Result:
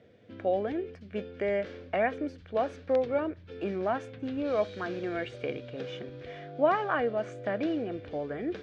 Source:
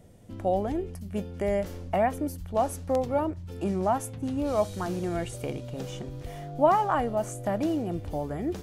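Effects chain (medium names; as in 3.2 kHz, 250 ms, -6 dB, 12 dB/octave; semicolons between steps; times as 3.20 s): cabinet simulation 140–4500 Hz, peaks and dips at 170 Hz -8 dB, 470 Hz +7 dB, 890 Hz -8 dB, 1.6 kHz +9 dB, 2.3 kHz +7 dB, 3.5 kHz +4 dB; trim -3 dB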